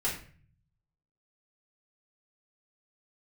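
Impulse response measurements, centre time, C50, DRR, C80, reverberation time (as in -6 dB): 31 ms, 6.0 dB, -7.0 dB, 10.5 dB, 0.45 s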